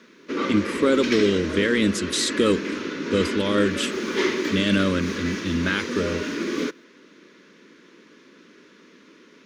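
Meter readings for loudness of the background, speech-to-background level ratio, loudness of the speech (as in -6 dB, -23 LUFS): -28.0 LUFS, 4.5 dB, -23.5 LUFS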